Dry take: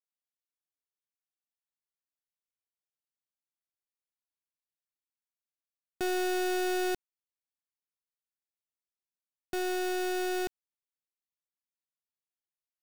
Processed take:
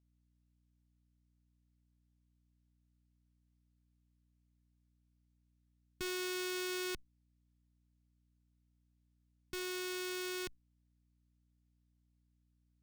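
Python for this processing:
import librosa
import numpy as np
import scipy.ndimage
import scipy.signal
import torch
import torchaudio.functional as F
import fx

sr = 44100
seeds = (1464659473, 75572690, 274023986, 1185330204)

y = fx.tone_stack(x, sr, knobs='6-0-2')
y = fx.add_hum(y, sr, base_hz=60, snr_db=27)
y = fx.running_max(y, sr, window=3)
y = y * librosa.db_to_amplitude(13.0)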